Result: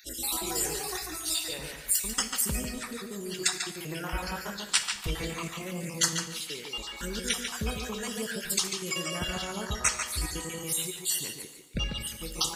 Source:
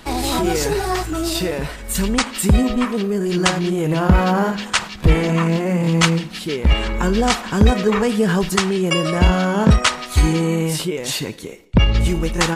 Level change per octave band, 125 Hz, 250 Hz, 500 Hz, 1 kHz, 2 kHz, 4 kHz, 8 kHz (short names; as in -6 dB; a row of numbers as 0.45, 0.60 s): -21.0, -20.5, -18.5, -16.5, -12.0, -7.5, -2.0 dB